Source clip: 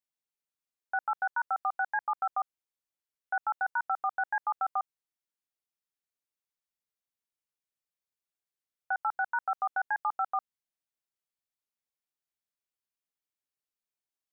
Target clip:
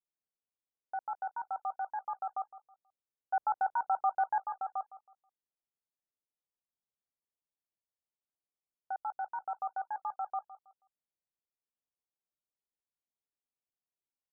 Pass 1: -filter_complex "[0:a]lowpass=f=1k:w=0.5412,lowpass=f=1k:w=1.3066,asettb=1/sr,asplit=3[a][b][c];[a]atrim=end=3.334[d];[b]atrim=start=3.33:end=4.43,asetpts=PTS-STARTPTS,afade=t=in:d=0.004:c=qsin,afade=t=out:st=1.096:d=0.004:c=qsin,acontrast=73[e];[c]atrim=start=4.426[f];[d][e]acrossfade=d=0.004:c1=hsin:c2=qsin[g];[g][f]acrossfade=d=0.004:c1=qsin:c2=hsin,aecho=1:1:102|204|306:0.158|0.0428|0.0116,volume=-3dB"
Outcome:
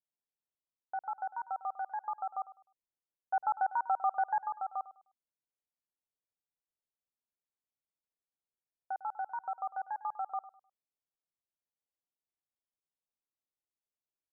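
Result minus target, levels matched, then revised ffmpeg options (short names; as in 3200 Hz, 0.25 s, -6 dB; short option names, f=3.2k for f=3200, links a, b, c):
echo 59 ms early
-filter_complex "[0:a]lowpass=f=1k:w=0.5412,lowpass=f=1k:w=1.3066,asettb=1/sr,asplit=3[a][b][c];[a]atrim=end=3.334[d];[b]atrim=start=3.33:end=4.43,asetpts=PTS-STARTPTS,afade=t=in:d=0.004:c=qsin,afade=t=out:st=1.096:d=0.004:c=qsin,acontrast=73[e];[c]atrim=start=4.426[f];[d][e]acrossfade=d=0.004:c1=hsin:c2=qsin[g];[g][f]acrossfade=d=0.004:c1=qsin:c2=hsin,aecho=1:1:161|322|483:0.158|0.0428|0.0116,volume=-3dB"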